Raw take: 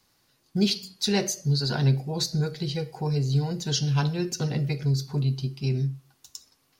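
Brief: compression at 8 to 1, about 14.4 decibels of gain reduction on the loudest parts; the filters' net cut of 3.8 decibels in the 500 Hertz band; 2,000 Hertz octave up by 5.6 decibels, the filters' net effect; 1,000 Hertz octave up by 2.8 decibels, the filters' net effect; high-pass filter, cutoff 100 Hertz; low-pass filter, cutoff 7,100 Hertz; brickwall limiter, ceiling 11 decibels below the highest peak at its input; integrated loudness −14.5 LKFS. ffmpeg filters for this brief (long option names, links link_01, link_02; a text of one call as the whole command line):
ffmpeg -i in.wav -af "highpass=100,lowpass=7100,equalizer=frequency=500:width_type=o:gain=-6,equalizer=frequency=1000:width_type=o:gain=4.5,equalizer=frequency=2000:width_type=o:gain=6.5,acompressor=threshold=-34dB:ratio=8,volume=26.5dB,alimiter=limit=-6dB:level=0:latency=1" out.wav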